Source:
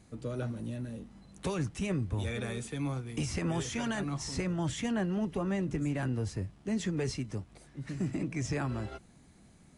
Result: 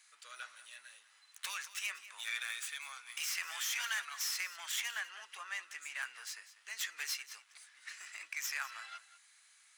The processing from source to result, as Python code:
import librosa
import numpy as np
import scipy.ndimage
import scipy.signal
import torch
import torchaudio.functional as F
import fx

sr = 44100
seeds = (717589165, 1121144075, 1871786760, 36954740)

y = fx.tracing_dist(x, sr, depth_ms=0.044)
y = scipy.signal.sosfilt(scipy.signal.butter(4, 1400.0, 'highpass', fs=sr, output='sos'), y)
y = y + 10.0 ** (-15.5 / 20.0) * np.pad(y, (int(195 * sr / 1000.0), 0))[:len(y)]
y = F.gain(torch.from_numpy(y), 4.5).numpy()